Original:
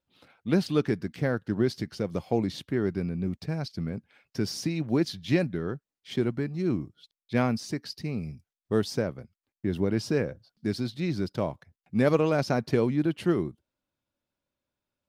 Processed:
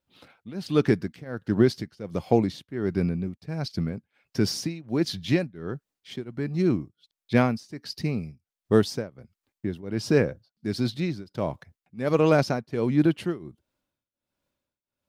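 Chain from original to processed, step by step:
shaped tremolo triangle 1.4 Hz, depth 95%
level +6.5 dB

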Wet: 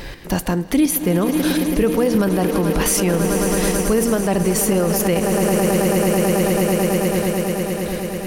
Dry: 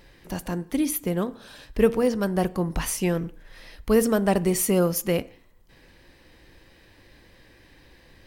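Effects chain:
square-wave tremolo 1.4 Hz, depth 60%, duty 20%
echo that builds up and dies away 109 ms, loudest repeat 8, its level −16.5 dB
speech leveller within 4 dB 0.5 s
boost into a limiter +23.5 dB
level −7 dB

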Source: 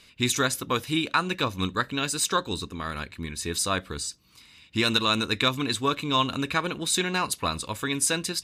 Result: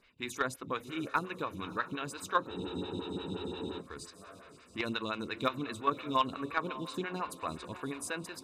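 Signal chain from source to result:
bass and treble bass +1 dB, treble −10 dB
in parallel at +2 dB: output level in coarse steps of 22 dB
on the sum: hard clipping −9 dBFS, distortion −21 dB
on a send: feedback delay with all-pass diffusion 612 ms, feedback 41%, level −13.5 dB
on the sum: frozen spectrum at 0:02.54, 1.26 s
phaser with staggered stages 5.7 Hz
level −8.5 dB

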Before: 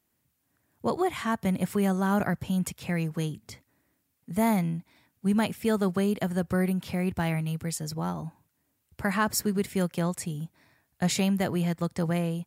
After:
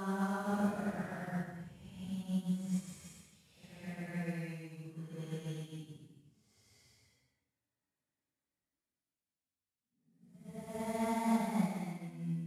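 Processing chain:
variable-slope delta modulation 64 kbit/s
extreme stretch with random phases 4.6×, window 0.25 s, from 0:02.03
expander for the loud parts 1.5 to 1, over −46 dBFS
level −8.5 dB

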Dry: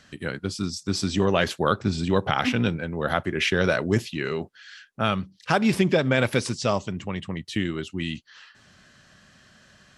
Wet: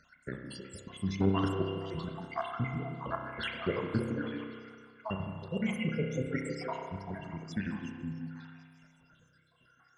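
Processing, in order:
time-frequency cells dropped at random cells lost 75%
formants moved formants −3 semitones
echo through a band-pass that steps 158 ms, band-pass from 230 Hz, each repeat 0.7 octaves, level −3 dB
spring reverb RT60 1.8 s, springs 31 ms, chirp 80 ms, DRR 2.5 dB
level −7 dB

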